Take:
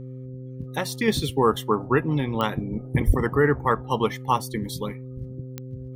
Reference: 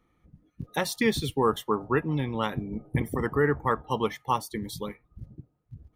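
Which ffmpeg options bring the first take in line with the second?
-filter_complex "[0:a]adeclick=t=4,bandreject=f=128.9:t=h:w=4,bandreject=f=257.8:t=h:w=4,bandreject=f=386.7:t=h:w=4,bandreject=f=515.6:t=h:w=4,asplit=3[s0][s1][s2];[s0]afade=t=out:st=3.06:d=0.02[s3];[s1]highpass=f=140:w=0.5412,highpass=f=140:w=1.3066,afade=t=in:st=3.06:d=0.02,afade=t=out:st=3.18:d=0.02[s4];[s2]afade=t=in:st=3.18:d=0.02[s5];[s3][s4][s5]amix=inputs=3:normalize=0,asetnsamples=n=441:p=0,asendcmd='1.08 volume volume -4dB',volume=1"

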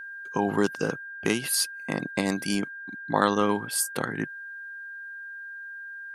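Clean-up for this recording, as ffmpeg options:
-af "bandreject=f=1600:w=30"

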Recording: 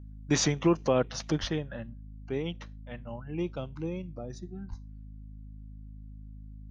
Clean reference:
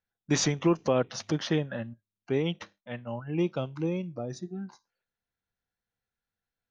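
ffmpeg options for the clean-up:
-filter_complex "[0:a]bandreject=f=52.3:t=h:w=4,bandreject=f=104.6:t=h:w=4,bandreject=f=156.9:t=h:w=4,bandreject=f=209.2:t=h:w=4,bandreject=f=261.5:t=h:w=4,asplit=3[s0][s1][s2];[s0]afade=t=out:st=1.4:d=0.02[s3];[s1]highpass=f=140:w=0.5412,highpass=f=140:w=1.3066,afade=t=in:st=1.4:d=0.02,afade=t=out:st=1.52:d=0.02[s4];[s2]afade=t=in:st=1.52:d=0.02[s5];[s3][s4][s5]amix=inputs=3:normalize=0,asplit=3[s6][s7][s8];[s6]afade=t=out:st=4.69:d=0.02[s9];[s7]highpass=f=140:w=0.5412,highpass=f=140:w=1.3066,afade=t=in:st=4.69:d=0.02,afade=t=out:st=4.81:d=0.02[s10];[s8]afade=t=in:st=4.81:d=0.02[s11];[s9][s10][s11]amix=inputs=3:normalize=0,asetnsamples=n=441:p=0,asendcmd='1.48 volume volume 5dB',volume=1"

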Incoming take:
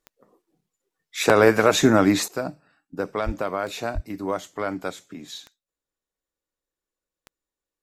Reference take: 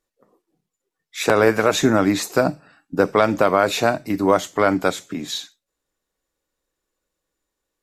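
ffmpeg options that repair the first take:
-filter_complex "[0:a]adeclick=t=4,asplit=3[s0][s1][s2];[s0]afade=t=out:st=3.25:d=0.02[s3];[s1]highpass=f=140:w=0.5412,highpass=f=140:w=1.3066,afade=t=in:st=3.25:d=0.02,afade=t=out:st=3.37:d=0.02[s4];[s2]afade=t=in:st=3.37:d=0.02[s5];[s3][s4][s5]amix=inputs=3:normalize=0,asplit=3[s6][s7][s8];[s6]afade=t=out:st=3.94:d=0.02[s9];[s7]highpass=f=140:w=0.5412,highpass=f=140:w=1.3066,afade=t=in:st=3.94:d=0.02,afade=t=out:st=4.06:d=0.02[s10];[s8]afade=t=in:st=4.06:d=0.02[s11];[s9][s10][s11]amix=inputs=3:normalize=0,asetnsamples=n=441:p=0,asendcmd='2.28 volume volume 10.5dB',volume=1"

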